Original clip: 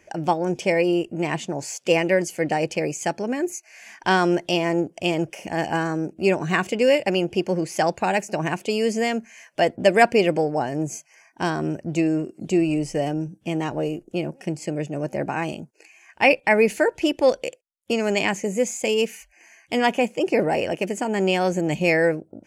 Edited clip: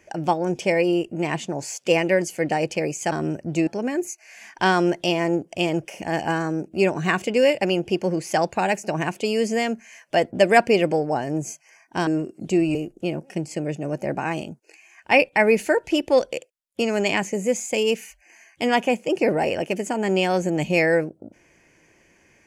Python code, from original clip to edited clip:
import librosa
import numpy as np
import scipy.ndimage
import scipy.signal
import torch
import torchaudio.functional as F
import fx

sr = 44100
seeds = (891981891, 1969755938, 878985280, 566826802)

y = fx.edit(x, sr, fx.move(start_s=11.52, length_s=0.55, to_s=3.12),
    fx.cut(start_s=12.75, length_s=1.11), tone=tone)